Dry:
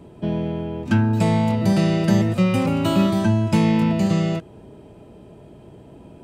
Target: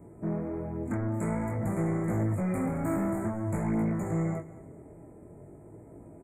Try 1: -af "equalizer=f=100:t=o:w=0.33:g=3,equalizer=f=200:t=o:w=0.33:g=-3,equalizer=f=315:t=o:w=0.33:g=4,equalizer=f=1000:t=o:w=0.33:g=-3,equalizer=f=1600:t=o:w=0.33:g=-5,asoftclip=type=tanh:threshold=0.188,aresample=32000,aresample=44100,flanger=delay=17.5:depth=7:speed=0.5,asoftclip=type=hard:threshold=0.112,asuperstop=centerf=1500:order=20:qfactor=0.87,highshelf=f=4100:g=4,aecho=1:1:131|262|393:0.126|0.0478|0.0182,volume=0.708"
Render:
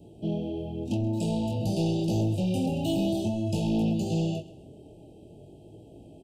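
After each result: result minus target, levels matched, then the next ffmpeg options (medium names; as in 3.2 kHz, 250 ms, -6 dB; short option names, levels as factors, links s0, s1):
2 kHz band -8.0 dB; echo 80 ms early; saturation: distortion -6 dB
-af "equalizer=f=100:t=o:w=0.33:g=3,equalizer=f=200:t=o:w=0.33:g=-3,equalizer=f=315:t=o:w=0.33:g=4,equalizer=f=1000:t=o:w=0.33:g=-3,equalizer=f=1600:t=o:w=0.33:g=-5,asoftclip=type=tanh:threshold=0.188,aresample=32000,aresample=44100,flanger=delay=17.5:depth=7:speed=0.5,asoftclip=type=hard:threshold=0.112,asuperstop=centerf=4000:order=20:qfactor=0.87,highshelf=f=4100:g=4,aecho=1:1:131|262|393:0.126|0.0478|0.0182,volume=0.708"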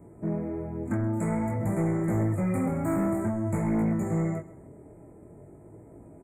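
echo 80 ms early; saturation: distortion -6 dB
-af "equalizer=f=100:t=o:w=0.33:g=3,equalizer=f=200:t=o:w=0.33:g=-3,equalizer=f=315:t=o:w=0.33:g=4,equalizer=f=1000:t=o:w=0.33:g=-3,equalizer=f=1600:t=o:w=0.33:g=-5,asoftclip=type=tanh:threshold=0.188,aresample=32000,aresample=44100,flanger=delay=17.5:depth=7:speed=0.5,asoftclip=type=hard:threshold=0.112,asuperstop=centerf=4000:order=20:qfactor=0.87,highshelf=f=4100:g=4,aecho=1:1:211|422|633:0.126|0.0478|0.0182,volume=0.708"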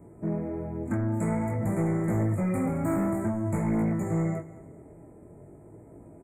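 saturation: distortion -6 dB
-af "equalizer=f=100:t=o:w=0.33:g=3,equalizer=f=200:t=o:w=0.33:g=-3,equalizer=f=315:t=o:w=0.33:g=4,equalizer=f=1000:t=o:w=0.33:g=-3,equalizer=f=1600:t=o:w=0.33:g=-5,asoftclip=type=tanh:threshold=0.0944,aresample=32000,aresample=44100,flanger=delay=17.5:depth=7:speed=0.5,asoftclip=type=hard:threshold=0.112,asuperstop=centerf=4000:order=20:qfactor=0.87,highshelf=f=4100:g=4,aecho=1:1:211|422|633:0.126|0.0478|0.0182,volume=0.708"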